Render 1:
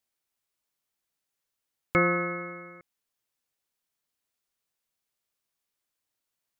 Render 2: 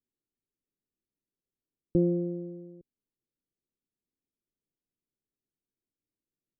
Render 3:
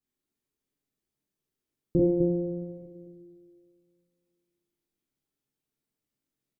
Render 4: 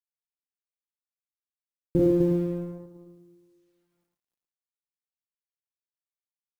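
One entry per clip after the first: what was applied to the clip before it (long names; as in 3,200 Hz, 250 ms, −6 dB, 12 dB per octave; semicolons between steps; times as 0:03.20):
inverse Chebyshev low-pass filter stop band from 1,300 Hz, stop band 60 dB; parametric band 73 Hz −6.5 dB 2.6 octaves; level +6.5 dB
loudspeakers that aren't time-aligned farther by 15 metres 0 dB, 87 metres −5 dB; on a send at −1 dB: convolution reverb, pre-delay 3 ms
mu-law and A-law mismatch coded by A; single-tap delay 110 ms −6 dB; level +1.5 dB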